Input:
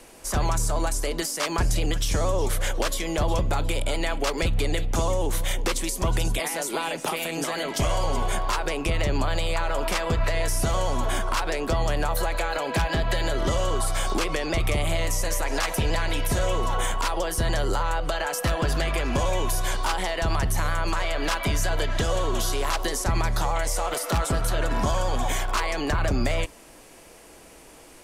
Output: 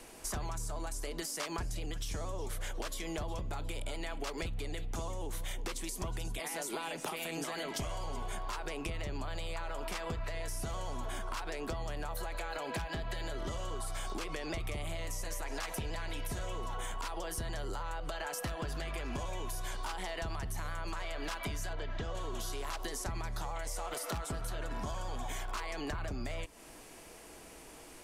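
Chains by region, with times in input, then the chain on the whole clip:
21.73–22.15 LPF 6000 Hz + high shelf 4500 Hz -9.5 dB
whole clip: notch 540 Hz, Q 12; compressor, threshold -32 dBFS; gain -3.5 dB

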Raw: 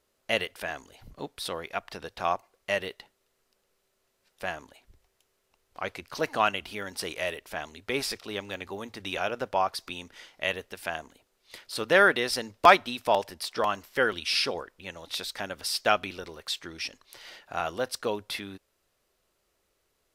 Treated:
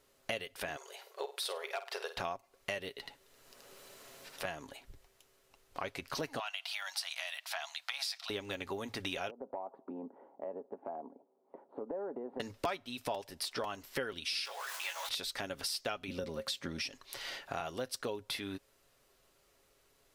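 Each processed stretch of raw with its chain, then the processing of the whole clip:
0.76–2.17 hard clip -23 dBFS + brick-wall FIR high-pass 360 Hz + flutter echo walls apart 8.5 m, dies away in 0.26 s
2.89–4.45 echo 77 ms -3 dB + three-band squash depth 70%
6.39–8.3 compressor 2:1, threshold -31 dBFS + elliptic high-pass 680 Hz + bell 4200 Hz +8 dB 0.93 oct
9.3–12.4 elliptic band-pass 210–870 Hz, stop band 70 dB + compressor 3:1, threshold -43 dBFS
14.45–15.09 zero-crossing step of -37.5 dBFS + HPF 800 Hz 24 dB/oct + doubler 18 ms -4 dB
16.08–16.82 HPF 58 Hz + low shelf 180 Hz +9 dB + small resonant body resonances 220/540 Hz, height 14 dB, ringing for 0.1 s
whole clip: comb 7.3 ms, depth 35%; dynamic EQ 1300 Hz, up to -5 dB, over -39 dBFS, Q 0.72; compressor 5:1, threshold -40 dBFS; gain +4 dB

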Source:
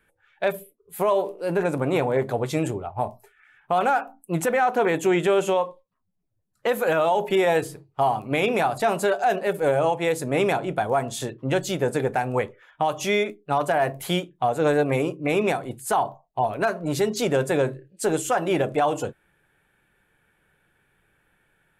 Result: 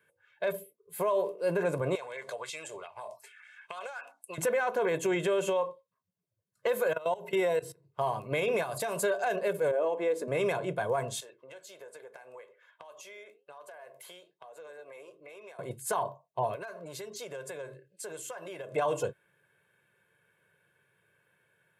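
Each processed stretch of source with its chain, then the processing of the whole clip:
1.95–4.38 weighting filter ITU-R 468 + compressor 10:1, threshold -35 dBFS + LFO bell 2.6 Hz 570–2700 Hz +9 dB
6.93–7.85 ripple EQ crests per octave 2, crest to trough 8 dB + level quantiser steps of 20 dB
8.63–9.03 high shelf 5800 Hz +10 dB + compressor 10:1, threshold -24 dBFS
9.71–10.28 tilt -3 dB/oct + compressor 3:1, threshold -22 dBFS + brick-wall FIR high-pass 190 Hz
11.2–15.59 HPF 520 Hz + compressor, threshold -38 dBFS + flange 1.2 Hz, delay 2.7 ms, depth 9.1 ms, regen -79%
16.55–18.73 low shelf 380 Hz -10.5 dB + compressor 8:1, threshold -34 dBFS
whole clip: HPF 110 Hz 24 dB/oct; comb 1.9 ms, depth 65%; limiter -15 dBFS; gain -5.5 dB

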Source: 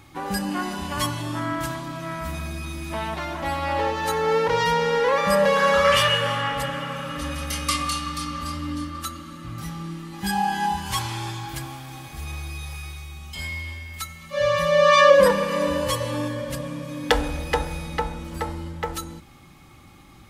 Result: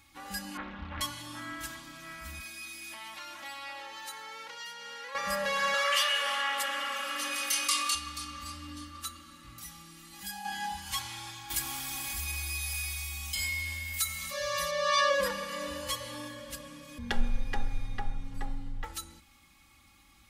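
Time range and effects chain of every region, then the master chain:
0.57–1.01 LPF 2400 Hz 24 dB/oct + low shelf 170 Hz +10 dB + Doppler distortion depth 0.79 ms
2.4–5.15 HPF 220 Hz + tilt shelf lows -3 dB, about 1300 Hz + compressor 4:1, threshold -29 dBFS
5.74–7.95 Bessel high-pass 420 Hz, order 8 + fast leveller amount 50%
9.58–10.45 high shelf 6500 Hz +10 dB + compressor 2:1, threshold -33 dBFS
11.5–14.71 high shelf 6600 Hz +10 dB + fast leveller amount 50%
16.98–18.84 tilt -3.5 dB/oct + frequency shift -59 Hz
whole clip: passive tone stack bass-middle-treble 5-5-5; comb 3.6 ms, depth 63%

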